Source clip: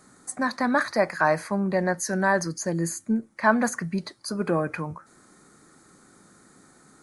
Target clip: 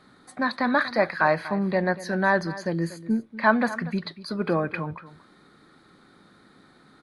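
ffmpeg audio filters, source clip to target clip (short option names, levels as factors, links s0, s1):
-af "highshelf=f=5100:t=q:w=3:g=-11.5,aecho=1:1:239:0.158"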